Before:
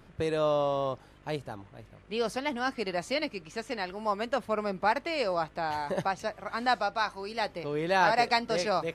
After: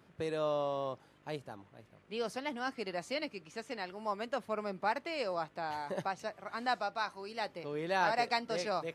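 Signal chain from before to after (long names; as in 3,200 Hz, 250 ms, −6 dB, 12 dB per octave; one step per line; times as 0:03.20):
high-pass filter 120 Hz 12 dB per octave
level −6.5 dB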